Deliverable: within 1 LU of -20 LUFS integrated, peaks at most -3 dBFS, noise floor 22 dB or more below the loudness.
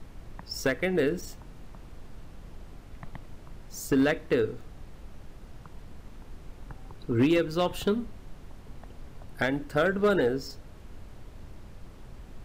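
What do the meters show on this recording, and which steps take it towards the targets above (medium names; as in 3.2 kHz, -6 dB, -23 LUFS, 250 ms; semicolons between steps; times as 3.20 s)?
clipped samples 0.3%; clipping level -17.0 dBFS; noise floor -48 dBFS; noise floor target -50 dBFS; loudness -27.5 LUFS; peak level -17.0 dBFS; loudness target -20.0 LUFS
-> clip repair -17 dBFS; noise print and reduce 6 dB; trim +7.5 dB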